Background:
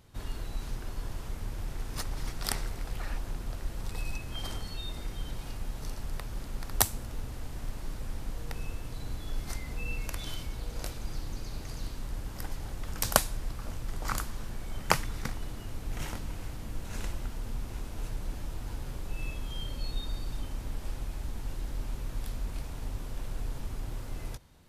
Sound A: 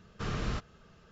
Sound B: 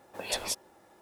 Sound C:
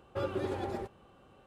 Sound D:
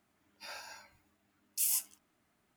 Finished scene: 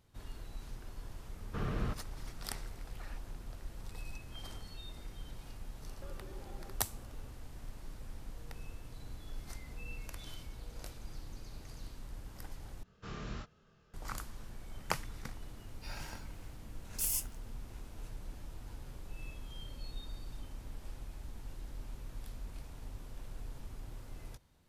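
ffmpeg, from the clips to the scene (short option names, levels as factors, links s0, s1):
-filter_complex "[1:a]asplit=2[s0][s1];[0:a]volume=0.335[s2];[s0]lowpass=f=1400:p=1[s3];[3:a]acompressor=threshold=0.00398:ratio=6:attack=3.2:release=140:knee=1:detection=peak[s4];[s1]asplit=2[s5][s6];[s6]adelay=26,volume=0.794[s7];[s5][s7]amix=inputs=2:normalize=0[s8];[s2]asplit=2[s9][s10];[s9]atrim=end=12.834[s11];[s8]atrim=end=1.11,asetpts=PTS-STARTPTS,volume=0.282[s12];[s10]atrim=start=13.936[s13];[s3]atrim=end=1.11,asetpts=PTS-STARTPTS,volume=0.841,afade=t=in:d=0.004:c=hsin,afade=t=out:st=1.106:d=0.004:c=hsin,adelay=1340[s14];[s4]atrim=end=1.46,asetpts=PTS-STARTPTS,volume=0.75,afade=t=in:d=0.004:c=hsin,afade=t=out:st=1.456:d=0.004:c=hsin,adelay=5870[s15];[4:a]atrim=end=2.56,asetpts=PTS-STARTPTS,volume=0.708,afade=t=in:d=0.004:c=hsin,afade=t=out:st=2.556:d=0.004:c=hsin,adelay=15410[s16];[s11][s12]acrossfade=d=0.004:c1=hsin:c2=hsin[s17];[s17][s13]acrossfade=d=0.004:c1=hsin:c2=hsin[s18];[s18][s14][s15][s16]amix=inputs=4:normalize=0"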